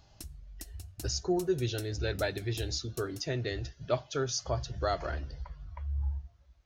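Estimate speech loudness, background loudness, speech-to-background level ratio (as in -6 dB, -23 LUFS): -34.0 LUFS, -50.0 LUFS, 16.0 dB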